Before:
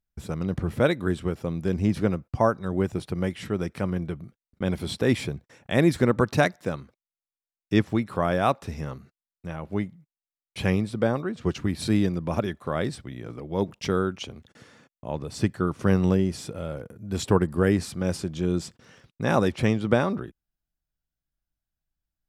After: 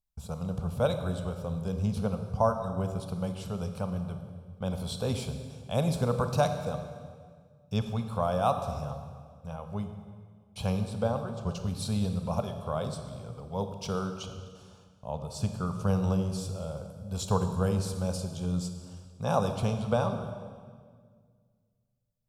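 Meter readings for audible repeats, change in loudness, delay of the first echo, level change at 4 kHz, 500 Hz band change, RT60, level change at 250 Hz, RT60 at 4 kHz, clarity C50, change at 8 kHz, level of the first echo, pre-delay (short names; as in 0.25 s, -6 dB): none, -5.5 dB, none, -4.5 dB, -5.5 dB, 1.8 s, -7.5 dB, 1.6 s, 8.0 dB, -2.0 dB, none, 26 ms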